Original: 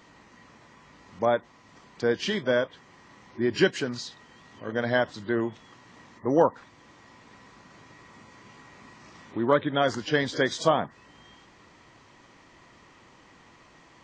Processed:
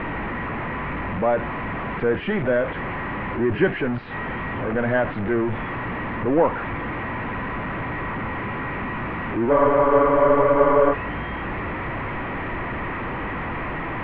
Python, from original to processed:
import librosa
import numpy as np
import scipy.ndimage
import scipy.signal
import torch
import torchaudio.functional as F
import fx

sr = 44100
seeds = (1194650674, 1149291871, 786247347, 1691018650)

y = x + 0.5 * 10.0 ** (-22.0 / 20.0) * np.sign(x)
y = scipy.signal.sosfilt(scipy.signal.butter(6, 2400.0, 'lowpass', fs=sr, output='sos'), y)
y = fx.low_shelf(y, sr, hz=68.0, db=11.0)
y = fx.spec_freeze(y, sr, seeds[0], at_s=9.51, hold_s=1.42)